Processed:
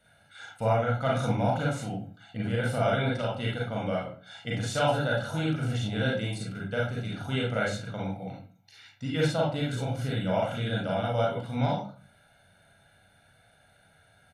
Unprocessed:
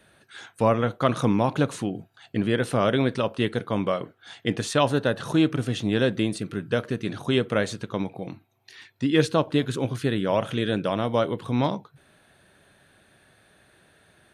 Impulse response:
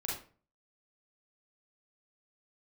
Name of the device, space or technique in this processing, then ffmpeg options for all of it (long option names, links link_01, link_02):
microphone above a desk: -filter_complex "[0:a]aecho=1:1:1.4:0.78[link_01];[1:a]atrim=start_sample=2205[link_02];[link_01][link_02]afir=irnorm=-1:irlink=0,volume=-7.5dB"